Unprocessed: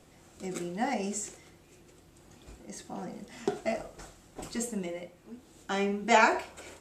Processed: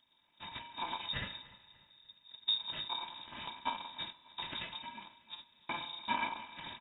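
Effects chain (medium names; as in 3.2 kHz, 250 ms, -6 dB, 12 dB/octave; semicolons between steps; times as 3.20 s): bit-reversed sample order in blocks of 256 samples; 1.07–3.05 s: peaking EQ 60 Hz +14 dB 1.3 oct; gate -49 dBFS, range -18 dB; compression 3:1, threshold -40 dBFS, peak gain reduction 17 dB; feedback delay 296 ms, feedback 39%, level -20.5 dB; spring tank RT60 2.4 s, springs 32 ms, chirp 25 ms, DRR 18 dB; frequency inversion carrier 3.7 kHz; trim +9.5 dB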